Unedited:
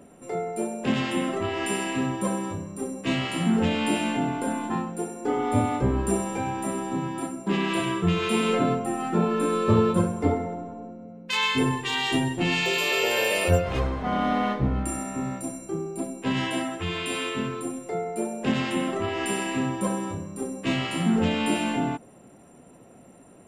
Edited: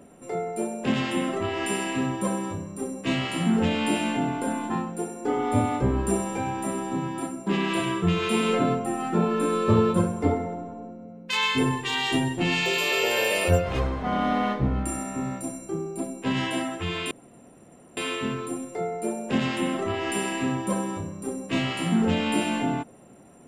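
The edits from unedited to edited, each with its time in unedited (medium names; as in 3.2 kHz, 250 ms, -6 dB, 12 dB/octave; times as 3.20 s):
17.11 s: insert room tone 0.86 s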